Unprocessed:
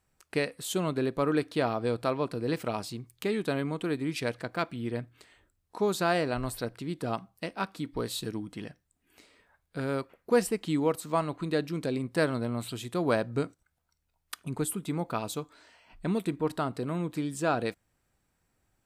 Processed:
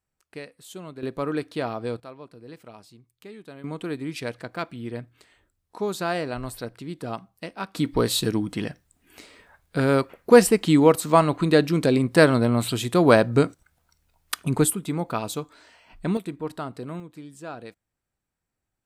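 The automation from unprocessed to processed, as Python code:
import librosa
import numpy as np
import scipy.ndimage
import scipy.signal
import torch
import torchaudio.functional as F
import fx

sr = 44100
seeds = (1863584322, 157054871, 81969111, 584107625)

y = fx.gain(x, sr, db=fx.steps((0.0, -9.5), (1.03, -0.5), (2.0, -13.0), (3.64, 0.0), (7.75, 11.0), (14.7, 4.5), (16.17, -2.0), (17.0, -9.5)))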